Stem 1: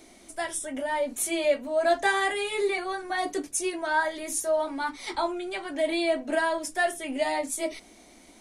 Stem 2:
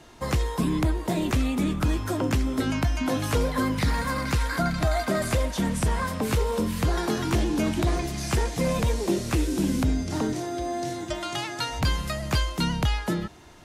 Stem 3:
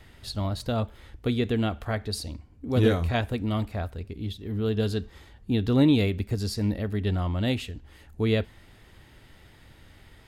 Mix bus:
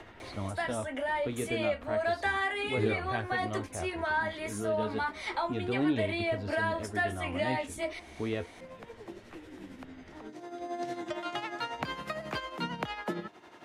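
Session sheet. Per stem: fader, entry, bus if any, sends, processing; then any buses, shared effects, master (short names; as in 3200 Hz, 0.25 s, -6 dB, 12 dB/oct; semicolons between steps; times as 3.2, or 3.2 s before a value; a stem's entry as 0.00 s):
+1.0 dB, 0.20 s, no send, tilt shelf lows -5 dB, about 760 Hz; compressor 1.5:1, threshold -37 dBFS, peak gain reduction 7.5 dB; soft clip -18 dBFS, distortion -27 dB
-3.0 dB, 0.00 s, no send, tremolo 11 Hz, depth 60%; HPF 200 Hz 12 dB/oct; auto duck -19 dB, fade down 0.25 s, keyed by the third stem
-2.5 dB, 0.00 s, no send, high shelf 6600 Hz -9 dB; flange 0.33 Hz, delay 8.9 ms, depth 6.5 ms, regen +41%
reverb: off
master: tone controls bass -6 dB, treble -15 dB; three-band squash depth 40%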